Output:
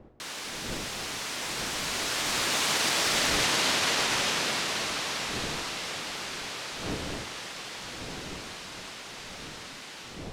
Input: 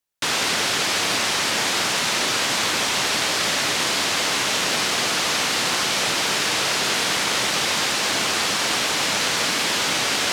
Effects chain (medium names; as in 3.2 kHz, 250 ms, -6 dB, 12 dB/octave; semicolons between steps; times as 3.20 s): fade out at the end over 0.54 s; Doppler pass-by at 3.32 s, 34 m/s, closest 13 m; wind noise 400 Hz -45 dBFS; peak limiter -19 dBFS, peak gain reduction 8 dB; trim +2.5 dB